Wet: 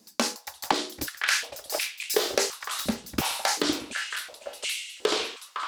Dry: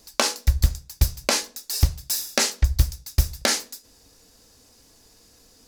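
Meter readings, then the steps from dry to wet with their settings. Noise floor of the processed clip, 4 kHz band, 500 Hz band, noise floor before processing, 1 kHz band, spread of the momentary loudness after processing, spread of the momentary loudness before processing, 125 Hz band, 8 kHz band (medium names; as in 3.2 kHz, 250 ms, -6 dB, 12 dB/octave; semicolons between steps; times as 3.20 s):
-53 dBFS, -1.0 dB, +3.0 dB, -56 dBFS, +2.5 dB, 8 LU, 5 LU, -21.5 dB, -4.0 dB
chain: ever faster or slower copies 444 ms, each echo -5 st, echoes 2; filtered feedback delay 509 ms, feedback 37%, low-pass 1.1 kHz, level -3 dB; step-sequenced high-pass 2.8 Hz 210–2300 Hz; trim -6 dB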